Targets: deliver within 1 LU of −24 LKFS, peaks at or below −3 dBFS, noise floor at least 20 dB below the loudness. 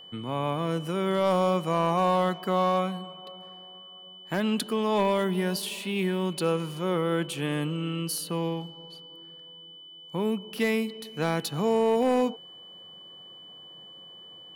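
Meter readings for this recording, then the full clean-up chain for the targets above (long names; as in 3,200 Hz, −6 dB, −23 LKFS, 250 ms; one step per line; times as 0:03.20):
share of clipped samples 0.6%; peaks flattened at −16.5 dBFS; interfering tone 3,000 Hz; level of the tone −45 dBFS; integrated loudness −27.5 LKFS; sample peak −16.5 dBFS; target loudness −24.0 LKFS
→ clipped peaks rebuilt −16.5 dBFS
notch filter 3,000 Hz, Q 30
level +3.5 dB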